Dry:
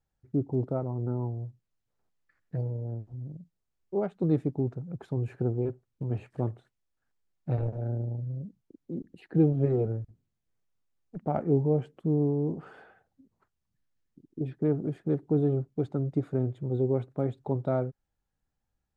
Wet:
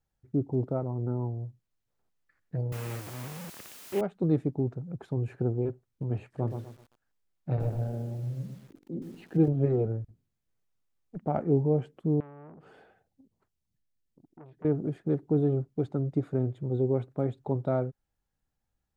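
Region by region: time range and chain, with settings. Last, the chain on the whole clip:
2.72–4.01 s: one-bit delta coder 16 kbps, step -34.5 dBFS + word length cut 8-bit, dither triangular + high-pass 110 Hz
6.33–9.48 s: hum notches 50/100/150/200/250/300/350/400/450/500 Hz + bit-crushed delay 124 ms, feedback 35%, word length 9-bit, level -7 dB
12.20–14.65 s: peaking EQ 1.3 kHz -8 dB 1.3 oct + compression 2.5:1, threshold -49 dBFS + transformer saturation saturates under 850 Hz
whole clip: none

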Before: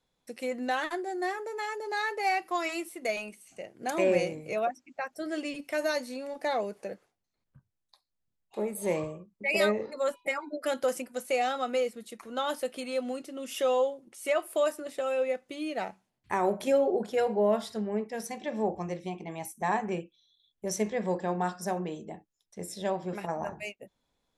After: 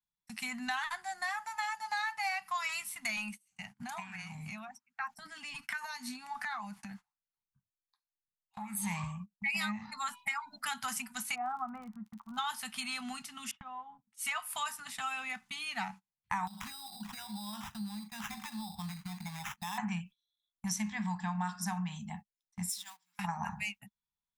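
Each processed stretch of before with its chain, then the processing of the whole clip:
3.78–8.77 s: compression 16:1, threshold -39 dBFS + sweeping bell 1.3 Hz 290–1600 Hz +13 dB
11.34–12.37 s: low-pass 1.1 kHz 24 dB/octave + crackle 52 per s -50 dBFS
13.51–14.07 s: low-pass 1 kHz + gate -45 dBFS, range -6 dB + compression 4:1, threshold -35 dBFS
16.47–19.78 s: compression 8:1, threshold -39 dBFS + sample-rate reducer 4.4 kHz
22.69–23.19 s: companding laws mixed up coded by mu + high-pass 200 Hz 6 dB/octave + differentiator
whole clip: gate -46 dBFS, range -25 dB; elliptic band-stop 210–860 Hz, stop band 40 dB; compression 4:1, threshold -39 dBFS; trim +6 dB

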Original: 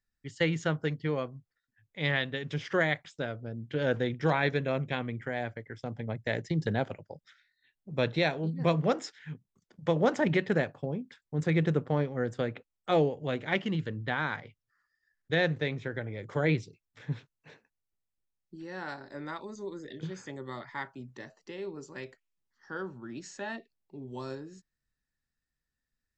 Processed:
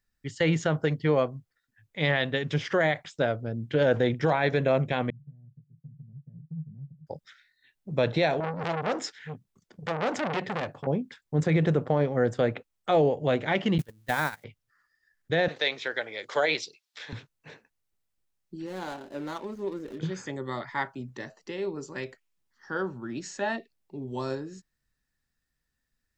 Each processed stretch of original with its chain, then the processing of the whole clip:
5.10–7.07 s: Butterworth band-pass 150 Hz, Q 5.1 + compression 2:1, threshold -47 dBFS
8.40–10.87 s: compression 5:1, threshold -26 dBFS + transformer saturation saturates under 2.2 kHz
13.78–14.44 s: zero-crossing glitches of -33 dBFS + gate -32 dBFS, range -27 dB
15.48–17.13 s: high-pass 550 Hz + peaking EQ 4.3 kHz +12 dB 1.4 oct
18.66–19.99 s: median filter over 25 samples + peaking EQ 130 Hz -10 dB 0.37 oct
whole clip: dynamic bell 670 Hz, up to +6 dB, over -42 dBFS, Q 1.4; peak limiter -20 dBFS; trim +6 dB

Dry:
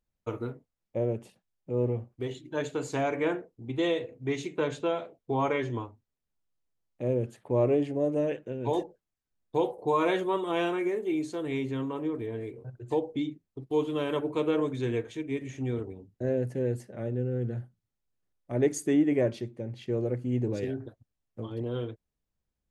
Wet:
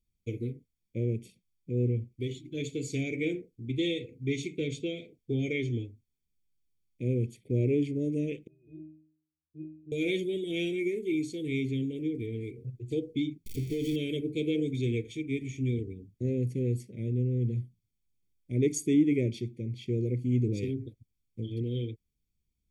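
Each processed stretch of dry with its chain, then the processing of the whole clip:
8.47–9.92 s: treble shelf 2.2 kHz -11.5 dB + pitch-class resonator D#, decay 0.59 s
13.46–13.96 s: jump at every zero crossing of -38.5 dBFS + compression 5:1, threshold -27 dBFS + waveshaping leveller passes 1
whole clip: elliptic band-stop 490–2300 Hz, stop band 70 dB; comb 0.9 ms, depth 66%

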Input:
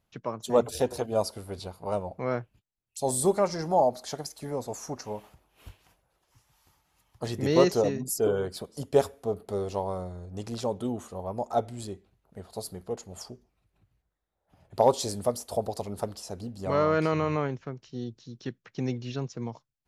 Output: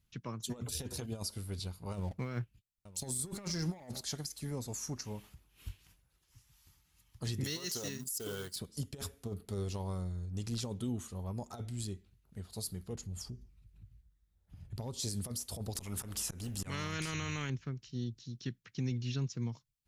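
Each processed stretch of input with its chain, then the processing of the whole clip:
1.94–4.01 s: waveshaping leveller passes 1 + delay 912 ms -20.5 dB
7.44–8.56 s: companding laws mixed up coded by A + tilt EQ +3 dB/octave + band-stop 2.4 kHz, Q 7.2
12.95–15.00 s: bass shelf 220 Hz +11.5 dB + compression 2:1, threshold -42 dBFS
15.75–17.50 s: peaking EQ 4.4 kHz -11.5 dB 0.55 oct + slow attack 250 ms + spectrum-flattening compressor 2:1
whole clip: compressor with a negative ratio -29 dBFS, ratio -1; amplifier tone stack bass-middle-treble 6-0-2; peak limiter -40 dBFS; trim +13 dB

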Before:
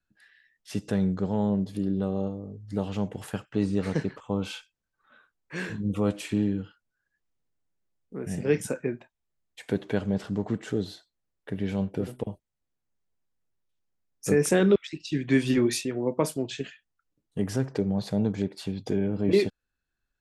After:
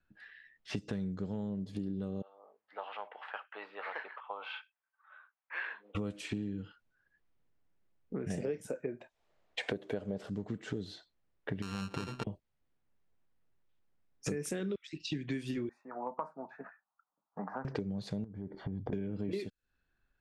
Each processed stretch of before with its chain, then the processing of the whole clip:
2.22–5.95 s: high-pass 810 Hz 24 dB/octave + distance through air 430 m
8.30–10.30 s: peaking EQ 600 Hz +13.5 dB 1.6 oct + tape noise reduction on one side only encoder only
11.62–12.24 s: sorted samples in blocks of 32 samples + treble shelf 4.9 kHz +7 dB + compression 2:1, threshold -36 dBFS
15.69–17.65 s: elliptic band-pass 180–1300 Hz + resonant low shelf 570 Hz -14 dB, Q 3
18.24–18.93 s: Savitzky-Golay filter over 41 samples + tilt EQ -2 dB/octave + compression 10:1, threshold -36 dBFS
whole clip: level-controlled noise filter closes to 2.9 kHz, open at -20.5 dBFS; dynamic bell 840 Hz, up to -7 dB, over -44 dBFS, Q 1.2; compression 10:1, threshold -39 dBFS; trim +5 dB

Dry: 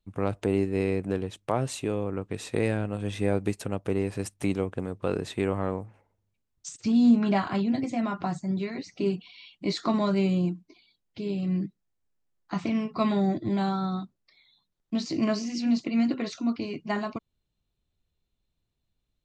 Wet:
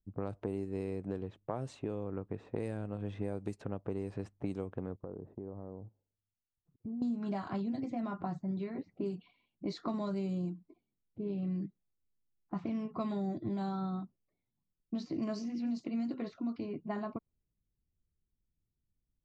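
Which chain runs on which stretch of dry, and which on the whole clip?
4.96–7.02 s: gate -46 dBFS, range -12 dB + low-pass 1.1 kHz + compression 5:1, threshold -35 dBFS
whole clip: level-controlled noise filter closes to 330 Hz, open at -21 dBFS; dynamic bell 2.5 kHz, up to -8 dB, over -50 dBFS, Q 0.82; compression 5:1, threshold -29 dBFS; trim -4 dB

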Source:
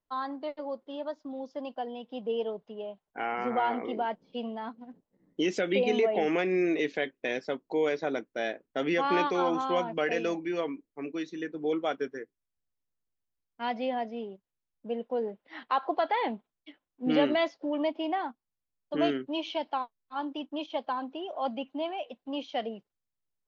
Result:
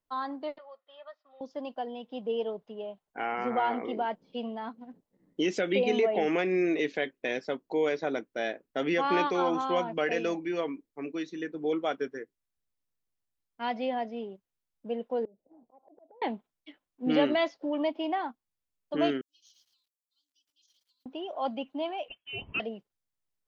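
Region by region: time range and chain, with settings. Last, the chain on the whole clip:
0.58–1.41 s: high-pass 1.4 kHz + distance through air 340 m + comb 1.6 ms, depth 61%
15.25–16.22 s: steep low-pass 690 Hz + slow attack 359 ms + compression 16:1, threshold -53 dBFS
19.21–21.06 s: inverse Chebyshev high-pass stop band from 1.9 kHz, stop band 60 dB + bit-crushed delay 111 ms, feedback 35%, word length 12-bit, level -5.5 dB
22.08–22.60 s: block-companded coder 5-bit + peaking EQ 320 Hz -11 dB 0.67 oct + frequency inversion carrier 3.3 kHz
whole clip: none

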